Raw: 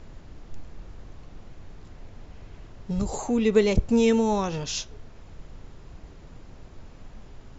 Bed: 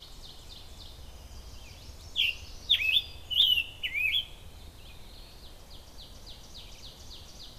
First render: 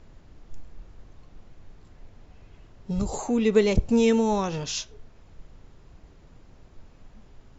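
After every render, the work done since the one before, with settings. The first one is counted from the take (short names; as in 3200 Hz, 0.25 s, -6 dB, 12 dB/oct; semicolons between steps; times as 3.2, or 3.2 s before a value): noise print and reduce 6 dB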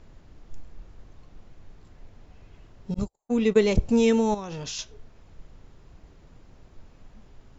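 2.94–3.64 gate -26 dBFS, range -53 dB; 4.34–4.79 compressor 12:1, threshold -30 dBFS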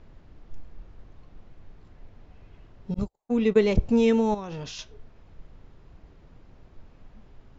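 air absorption 120 m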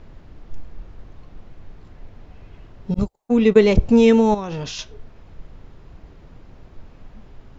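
gain +7.5 dB; limiter -2 dBFS, peak gain reduction 1.5 dB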